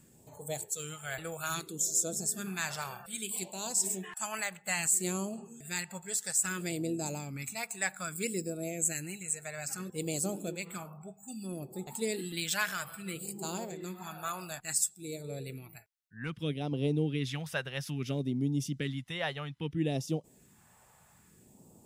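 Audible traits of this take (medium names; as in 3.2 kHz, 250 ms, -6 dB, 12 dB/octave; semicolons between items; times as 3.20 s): phasing stages 2, 0.61 Hz, lowest notch 280–1700 Hz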